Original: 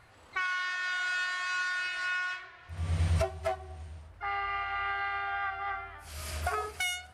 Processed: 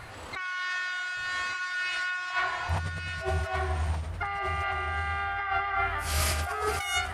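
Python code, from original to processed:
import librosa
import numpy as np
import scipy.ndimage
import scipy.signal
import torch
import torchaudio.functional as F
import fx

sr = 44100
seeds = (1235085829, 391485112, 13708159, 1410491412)

y = fx.peak_eq(x, sr, hz=870.0, db=14.0, octaves=0.64, at=(2.3, 2.8))
y = fx.over_compress(y, sr, threshold_db=-40.0, ratio=-1.0)
y = y + 10.0 ** (-6.5 / 20.0) * np.pad(y, (int(1172 * sr / 1000.0), 0))[:len(y)]
y = fx.end_taper(y, sr, db_per_s=140.0)
y = F.gain(torch.from_numpy(y), 8.5).numpy()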